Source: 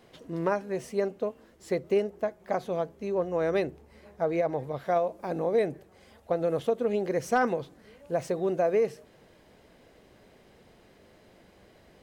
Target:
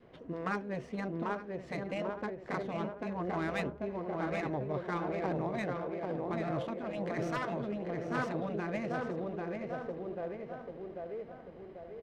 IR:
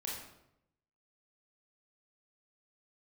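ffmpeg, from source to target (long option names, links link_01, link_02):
-filter_complex "[0:a]asplit=2[link_01][link_02];[link_02]adelay=791,lowpass=frequency=4500:poles=1,volume=-5dB,asplit=2[link_03][link_04];[link_04]adelay=791,lowpass=frequency=4500:poles=1,volume=0.5,asplit=2[link_05][link_06];[link_06]adelay=791,lowpass=frequency=4500:poles=1,volume=0.5,asplit=2[link_07][link_08];[link_08]adelay=791,lowpass=frequency=4500:poles=1,volume=0.5,asplit=2[link_09][link_10];[link_10]adelay=791,lowpass=frequency=4500:poles=1,volume=0.5,asplit=2[link_11][link_12];[link_12]adelay=791,lowpass=frequency=4500:poles=1,volume=0.5[link_13];[link_03][link_05][link_07][link_09][link_11][link_13]amix=inputs=6:normalize=0[link_14];[link_01][link_14]amix=inputs=2:normalize=0,adynamicequalizer=threshold=0.00794:dfrequency=790:dqfactor=2.5:tfrequency=790:tqfactor=2.5:attack=5:release=100:ratio=0.375:range=2.5:mode=cutabove:tftype=bell,afftfilt=real='re*lt(hypot(re,im),0.2)':imag='im*lt(hypot(re,im),0.2)':win_size=1024:overlap=0.75,asplit=2[link_15][link_16];[link_16]aecho=0:1:868:0.224[link_17];[link_15][link_17]amix=inputs=2:normalize=0,adynamicsmooth=sensitivity=7:basefreq=2000"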